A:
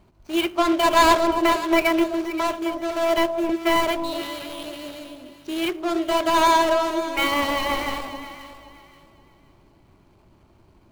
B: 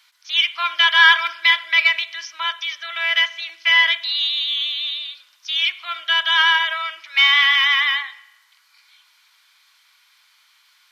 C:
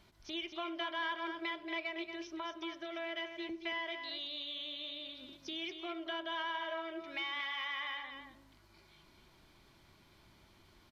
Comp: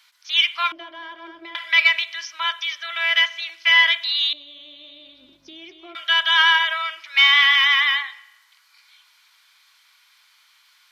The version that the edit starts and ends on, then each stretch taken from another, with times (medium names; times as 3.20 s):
B
0.72–1.55 s: from C
4.33–5.95 s: from C
not used: A